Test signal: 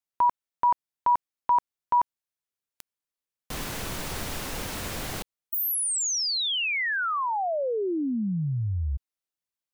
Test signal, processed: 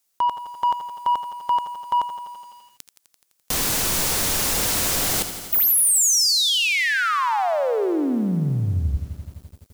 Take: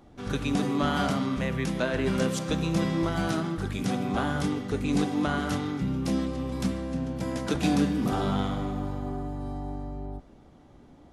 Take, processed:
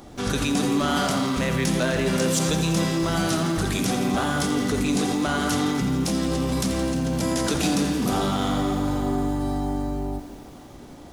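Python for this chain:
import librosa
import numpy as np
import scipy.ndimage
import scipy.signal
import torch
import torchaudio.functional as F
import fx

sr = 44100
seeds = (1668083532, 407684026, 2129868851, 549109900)

p1 = fx.bass_treble(x, sr, bass_db=-3, treble_db=9)
p2 = fx.over_compress(p1, sr, threshold_db=-34.0, ratio=-1.0)
p3 = p1 + (p2 * 10.0 ** (1.0 / 20.0))
p4 = 10.0 ** (-16.0 / 20.0) * np.tanh(p3 / 10.0 ** (-16.0 / 20.0))
p5 = p4 + 10.0 ** (-19.5 / 20.0) * np.pad(p4, (int(74 * sr / 1000.0), 0))[:len(p4)]
p6 = fx.echo_crushed(p5, sr, ms=85, feedback_pct=80, bits=8, wet_db=-11.5)
y = p6 * 10.0 ** (2.0 / 20.0)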